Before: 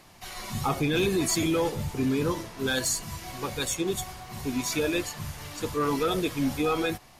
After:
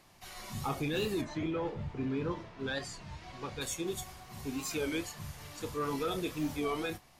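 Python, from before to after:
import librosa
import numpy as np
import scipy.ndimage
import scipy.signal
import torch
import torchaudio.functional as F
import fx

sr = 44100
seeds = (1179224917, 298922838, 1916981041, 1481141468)

y = fx.lowpass(x, sr, hz=fx.line((1.22, 2000.0), (3.6, 4800.0)), slope=12, at=(1.22, 3.6), fade=0.02)
y = fx.doubler(y, sr, ms=29.0, db=-11.5)
y = fx.record_warp(y, sr, rpm=33.33, depth_cents=160.0)
y = y * 10.0 ** (-8.0 / 20.0)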